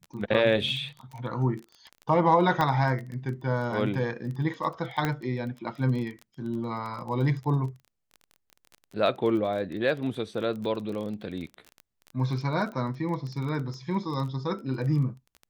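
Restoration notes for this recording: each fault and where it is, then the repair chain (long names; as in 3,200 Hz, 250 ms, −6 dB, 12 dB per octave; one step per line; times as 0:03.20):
surface crackle 21 per second −34 dBFS
0:02.61: click −13 dBFS
0:05.05: click −13 dBFS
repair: click removal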